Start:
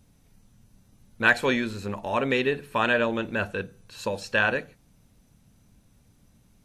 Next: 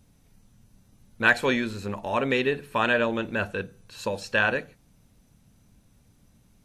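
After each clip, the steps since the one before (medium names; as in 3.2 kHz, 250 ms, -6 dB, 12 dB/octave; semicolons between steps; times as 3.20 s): no audible change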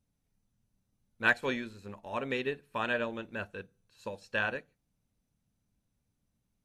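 upward expansion 1.5:1, over -44 dBFS; trim -5.5 dB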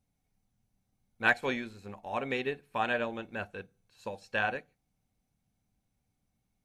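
small resonant body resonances 760/2200 Hz, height 11 dB, ringing for 45 ms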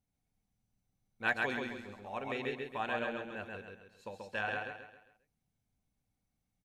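feedback delay 134 ms, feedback 40%, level -3 dB; trim -6.5 dB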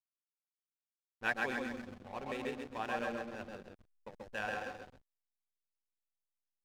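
echo whose repeats swap between lows and highs 130 ms, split 1.6 kHz, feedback 55%, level -5.5 dB; hysteresis with a dead band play -38 dBFS; trim -2 dB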